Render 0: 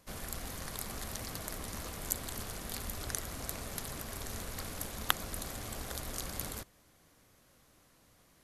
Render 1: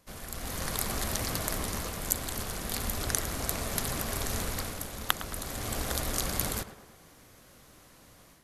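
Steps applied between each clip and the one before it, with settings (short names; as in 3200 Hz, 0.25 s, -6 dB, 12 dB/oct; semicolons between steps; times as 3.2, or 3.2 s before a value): AGC gain up to 10 dB; tape echo 0.107 s, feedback 62%, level -11 dB, low-pass 2200 Hz; gain -1 dB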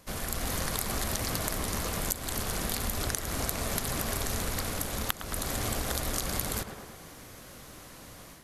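compressor 6:1, threshold -36 dBFS, peak gain reduction 15.5 dB; gain +8 dB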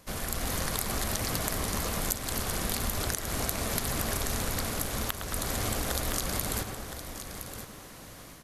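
echo 1.016 s -10 dB; maximiser +7.5 dB; gain -7 dB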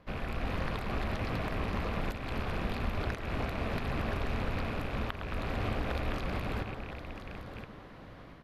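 rattling part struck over -40 dBFS, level -28 dBFS; air absorption 380 m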